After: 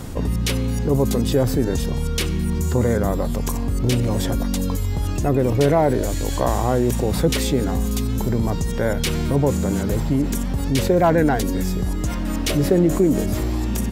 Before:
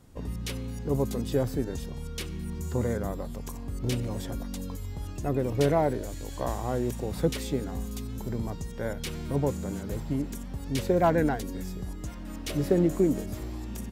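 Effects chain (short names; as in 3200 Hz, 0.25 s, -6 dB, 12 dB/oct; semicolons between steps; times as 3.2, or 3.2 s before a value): fast leveller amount 50%; gain +5.5 dB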